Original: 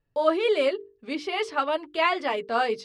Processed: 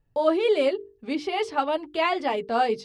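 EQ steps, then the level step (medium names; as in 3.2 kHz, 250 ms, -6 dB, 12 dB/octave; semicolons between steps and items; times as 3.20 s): bass shelf 260 Hz +9 dB; peaking EQ 810 Hz +7.5 dB 0.28 oct; dynamic bell 1.3 kHz, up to -4 dB, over -34 dBFS, Q 0.72; 0.0 dB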